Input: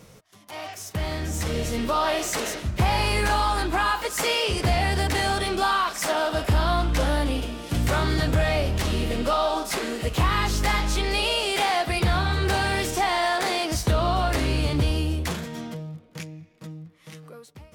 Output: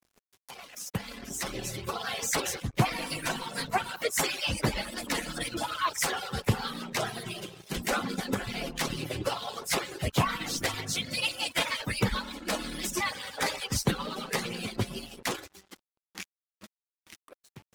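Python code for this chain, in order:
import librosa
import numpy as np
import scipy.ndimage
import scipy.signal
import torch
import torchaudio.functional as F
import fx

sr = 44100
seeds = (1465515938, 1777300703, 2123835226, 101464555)

y = fx.hpss_only(x, sr, part='percussive')
y = np.sign(y) * np.maximum(np.abs(y) - 10.0 ** (-50.0 / 20.0), 0.0)
y = y * 10.0 ** (1.0 / 20.0)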